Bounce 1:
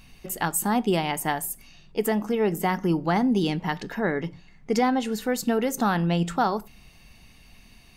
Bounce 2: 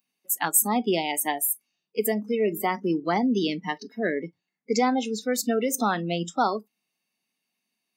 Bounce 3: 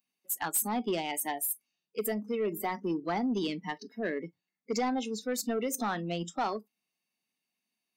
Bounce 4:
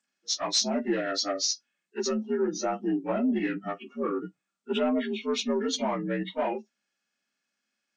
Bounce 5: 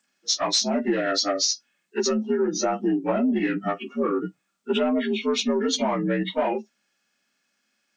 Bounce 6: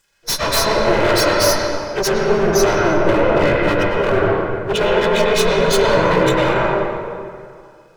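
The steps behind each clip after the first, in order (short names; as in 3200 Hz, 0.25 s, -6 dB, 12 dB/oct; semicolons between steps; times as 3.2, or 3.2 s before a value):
spectral noise reduction 27 dB; HPF 210 Hz 24 dB/oct; high shelf 6500 Hz +9 dB
soft clip -17 dBFS, distortion -16 dB; gain -5.5 dB
inharmonic rescaling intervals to 80%; gain +5 dB
compressor 3:1, threshold -30 dBFS, peak gain reduction 7.5 dB; gain +9 dB
minimum comb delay 2 ms; sine folder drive 11 dB, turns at -10 dBFS; reverb RT60 2.2 s, pre-delay 88 ms, DRR -3.5 dB; gain -5 dB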